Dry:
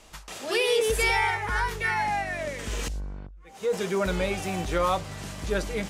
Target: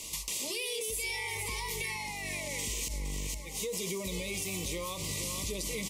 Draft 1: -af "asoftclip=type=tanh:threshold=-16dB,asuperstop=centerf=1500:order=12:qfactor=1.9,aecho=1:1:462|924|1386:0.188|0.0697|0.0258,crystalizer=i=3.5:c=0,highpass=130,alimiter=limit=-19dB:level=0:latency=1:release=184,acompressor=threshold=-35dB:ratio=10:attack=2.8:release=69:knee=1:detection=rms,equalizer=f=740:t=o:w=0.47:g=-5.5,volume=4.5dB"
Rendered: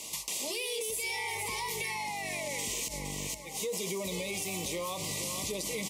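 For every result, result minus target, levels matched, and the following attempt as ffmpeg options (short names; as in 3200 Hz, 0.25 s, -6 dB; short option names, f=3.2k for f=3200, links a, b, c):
soft clip: distortion +13 dB; 1000 Hz band +4.0 dB; 125 Hz band -3.5 dB
-af "asoftclip=type=tanh:threshold=-8.5dB,asuperstop=centerf=1500:order=12:qfactor=1.9,aecho=1:1:462|924|1386:0.188|0.0697|0.0258,crystalizer=i=3.5:c=0,highpass=130,alimiter=limit=-19dB:level=0:latency=1:release=184,acompressor=threshold=-35dB:ratio=10:attack=2.8:release=69:knee=1:detection=rms,equalizer=f=740:t=o:w=0.47:g=-5.5,volume=4.5dB"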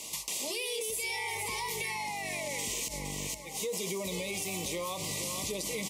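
1000 Hz band +4.0 dB; 125 Hz band -3.5 dB
-af "asoftclip=type=tanh:threshold=-8.5dB,asuperstop=centerf=1500:order=12:qfactor=1.9,aecho=1:1:462|924|1386:0.188|0.0697|0.0258,crystalizer=i=3.5:c=0,highpass=130,alimiter=limit=-19dB:level=0:latency=1:release=184,acompressor=threshold=-35dB:ratio=10:attack=2.8:release=69:knee=1:detection=rms,equalizer=f=740:t=o:w=0.47:g=-15,volume=4.5dB"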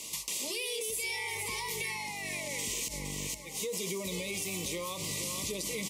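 125 Hz band -3.0 dB
-af "asoftclip=type=tanh:threshold=-8.5dB,asuperstop=centerf=1500:order=12:qfactor=1.9,aecho=1:1:462|924|1386:0.188|0.0697|0.0258,crystalizer=i=3.5:c=0,highpass=45,alimiter=limit=-19dB:level=0:latency=1:release=184,acompressor=threshold=-35dB:ratio=10:attack=2.8:release=69:knee=1:detection=rms,equalizer=f=740:t=o:w=0.47:g=-15,volume=4.5dB"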